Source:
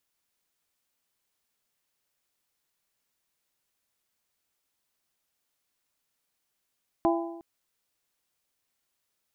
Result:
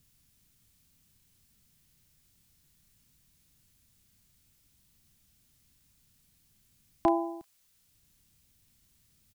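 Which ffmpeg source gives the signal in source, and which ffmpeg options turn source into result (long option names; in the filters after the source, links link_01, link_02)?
-f lavfi -i "aevalsrc='0.0891*pow(10,-3*t/0.95)*sin(2*PI*336*t)+0.0668*pow(10,-3*t/0.772)*sin(2*PI*672*t)+0.0501*pow(10,-3*t/0.731)*sin(2*PI*806.4*t)+0.0376*pow(10,-3*t/0.683)*sin(2*PI*1008*t)':duration=0.36:sample_rate=44100"
-filter_complex "[0:a]highshelf=frequency=2000:gain=10,acrossover=split=190|1200[link_01][link_02][link_03];[link_01]acompressor=mode=upward:threshold=-49dB:ratio=2.5[link_04];[link_03]asplit=2[link_05][link_06];[link_06]adelay=32,volume=-3dB[link_07];[link_05][link_07]amix=inputs=2:normalize=0[link_08];[link_04][link_02][link_08]amix=inputs=3:normalize=0"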